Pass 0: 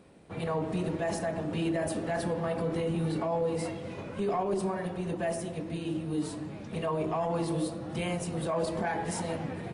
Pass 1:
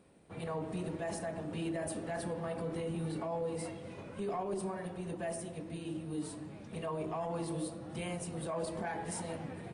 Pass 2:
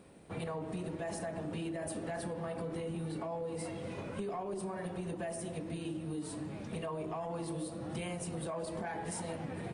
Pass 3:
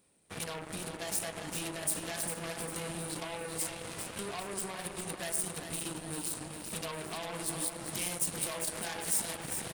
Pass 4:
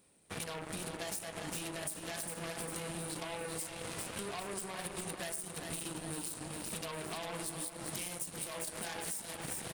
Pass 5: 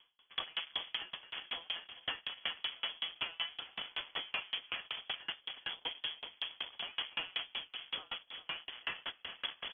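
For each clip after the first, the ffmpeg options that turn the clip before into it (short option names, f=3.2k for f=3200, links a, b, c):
-af "equalizer=f=8.9k:t=o:w=0.21:g=8,volume=-7dB"
-af "acompressor=threshold=-42dB:ratio=6,volume=6dB"
-af "aeval=exprs='0.0422*(cos(1*acos(clip(val(0)/0.0422,-1,1)))-cos(1*PI/2))+0.015*(cos(5*acos(clip(val(0)/0.0422,-1,1)))-cos(5*PI/2))+0.0188*(cos(7*acos(clip(val(0)/0.0422,-1,1)))-cos(7*PI/2))':c=same,crystalizer=i=5.5:c=0,aecho=1:1:401|802|1203|1604|2005:0.422|0.194|0.0892|0.041|0.0189,volume=-6.5dB"
-af "acompressor=threshold=-38dB:ratio=12,volume=2dB"
-af "lowpass=f=3k:t=q:w=0.5098,lowpass=f=3k:t=q:w=0.6013,lowpass=f=3k:t=q:w=0.9,lowpass=f=3k:t=q:w=2.563,afreqshift=-3500,aeval=exprs='val(0)*pow(10,-32*if(lt(mod(5.3*n/s,1),2*abs(5.3)/1000),1-mod(5.3*n/s,1)/(2*abs(5.3)/1000),(mod(5.3*n/s,1)-2*abs(5.3)/1000)/(1-2*abs(5.3)/1000))/20)':c=same,volume=9.5dB"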